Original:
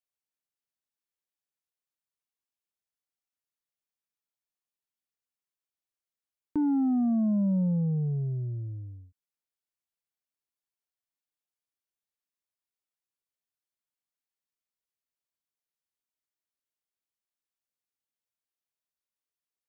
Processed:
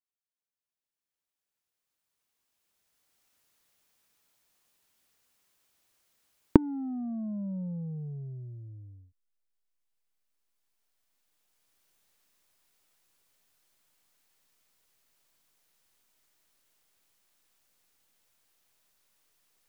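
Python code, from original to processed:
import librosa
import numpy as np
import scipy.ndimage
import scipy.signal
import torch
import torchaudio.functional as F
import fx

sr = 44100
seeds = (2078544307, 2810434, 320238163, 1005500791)

p1 = fx.recorder_agc(x, sr, target_db=-32.0, rise_db_per_s=9.2, max_gain_db=30)
p2 = fx.backlash(p1, sr, play_db=-15.0)
p3 = p1 + (p2 * 10.0 ** (-10.5 / 20.0))
y = p3 * 10.0 ** (-9.5 / 20.0)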